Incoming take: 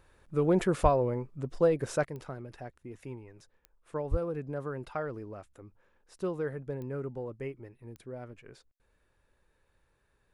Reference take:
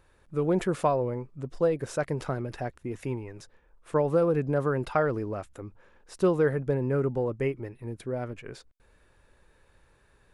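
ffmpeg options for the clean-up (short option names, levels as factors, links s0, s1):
-filter_complex "[0:a]adeclick=t=4,asplit=3[s0][s1][s2];[s0]afade=t=out:st=0.82:d=0.02[s3];[s1]highpass=f=140:w=0.5412,highpass=f=140:w=1.3066,afade=t=in:st=0.82:d=0.02,afade=t=out:st=0.94:d=0.02[s4];[s2]afade=t=in:st=0.94:d=0.02[s5];[s3][s4][s5]amix=inputs=3:normalize=0,asplit=3[s6][s7][s8];[s6]afade=t=out:st=4.1:d=0.02[s9];[s7]highpass=f=140:w=0.5412,highpass=f=140:w=1.3066,afade=t=in:st=4.1:d=0.02,afade=t=out:st=4.22:d=0.02[s10];[s8]afade=t=in:st=4.22:d=0.02[s11];[s9][s10][s11]amix=inputs=3:normalize=0,asetnsamples=n=441:p=0,asendcmd='2.05 volume volume 10dB',volume=1"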